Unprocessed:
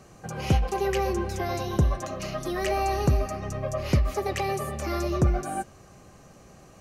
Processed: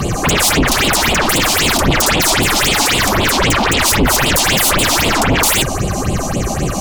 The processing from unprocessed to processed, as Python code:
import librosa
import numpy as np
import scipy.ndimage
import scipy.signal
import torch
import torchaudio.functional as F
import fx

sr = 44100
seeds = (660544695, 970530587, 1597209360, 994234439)

p1 = fx.over_compress(x, sr, threshold_db=-32.0, ratio=-1.0)
p2 = x + (p1 * 10.0 ** (1.5 / 20.0))
p3 = fx.fold_sine(p2, sr, drive_db=20, ceiling_db=-10.0)
p4 = fx.phaser_stages(p3, sr, stages=6, low_hz=110.0, high_hz=1700.0, hz=3.8, feedback_pct=30)
y = p4 * 10.0 ** (2.5 / 20.0)